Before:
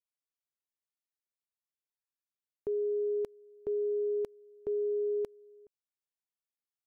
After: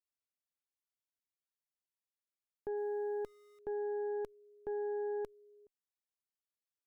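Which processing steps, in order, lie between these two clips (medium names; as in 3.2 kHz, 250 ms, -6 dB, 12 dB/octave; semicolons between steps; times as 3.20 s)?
2.77–3.59 s: small samples zeroed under -57 dBFS; Chebyshev shaper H 2 -12 dB, 4 -22 dB, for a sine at -27.5 dBFS; trim -6 dB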